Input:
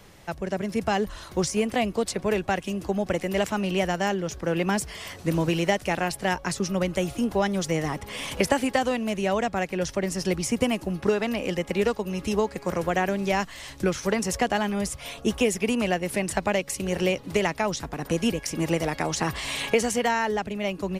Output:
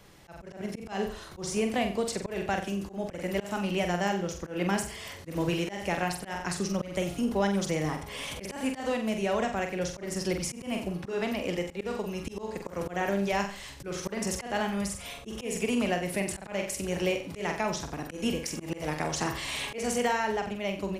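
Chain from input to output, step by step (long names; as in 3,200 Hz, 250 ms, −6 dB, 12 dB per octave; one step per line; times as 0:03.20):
flutter between parallel walls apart 7.8 metres, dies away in 0.43 s
volume swells 159 ms
level −4.5 dB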